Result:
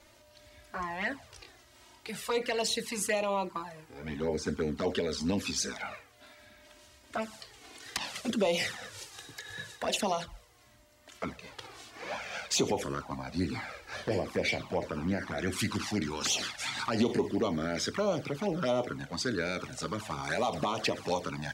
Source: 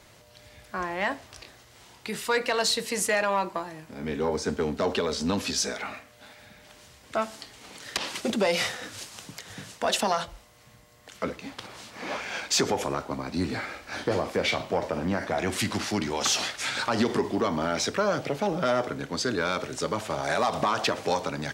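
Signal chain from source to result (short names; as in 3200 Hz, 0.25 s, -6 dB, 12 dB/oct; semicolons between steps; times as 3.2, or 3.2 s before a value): 9.14–9.83 small resonant body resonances 1700/3800 Hz, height 16 dB, ringing for 45 ms; envelope flanger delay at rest 3.5 ms, full sweep at -21 dBFS; gain -2 dB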